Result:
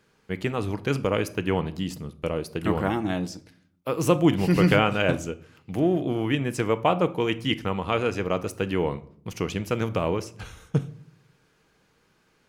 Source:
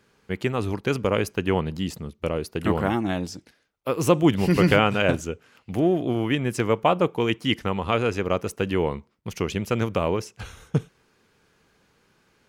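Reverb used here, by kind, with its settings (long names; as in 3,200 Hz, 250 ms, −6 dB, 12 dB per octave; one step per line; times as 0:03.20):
rectangular room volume 740 cubic metres, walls furnished, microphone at 0.56 metres
level −2 dB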